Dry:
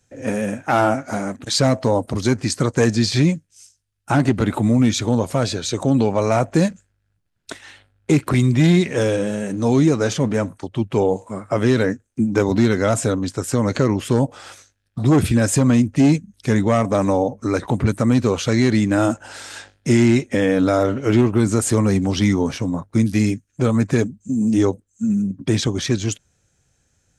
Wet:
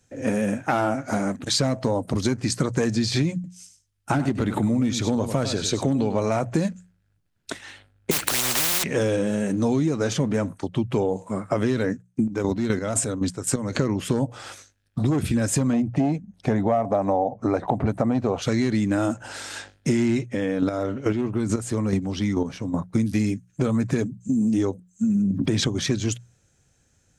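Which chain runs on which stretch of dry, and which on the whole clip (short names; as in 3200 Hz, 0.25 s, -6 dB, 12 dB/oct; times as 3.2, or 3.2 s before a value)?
3.34–6.3 hard clip -7.5 dBFS + echo 99 ms -11.5 dB
8.11–8.84 block floating point 5-bit + spectral compressor 10:1
11.93–13.73 dynamic EQ 8400 Hz, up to +7 dB, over -43 dBFS, Q 2.5 + chopper 3.9 Hz, depth 65%, duty 35%
15.73–18.42 LPF 2200 Hz 6 dB/oct + bell 720 Hz +14.5 dB 0.67 oct
20.19–22.74 high shelf 9500 Hz -6.5 dB + chopper 2.3 Hz, depth 60%, duty 15%
25.15–25.69 bell 11000 Hz -3.5 dB 1.8 oct + fast leveller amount 70%
whole clip: bell 200 Hz +2.5 dB 1.7 oct; notches 60/120/180 Hz; compressor, threshold -19 dBFS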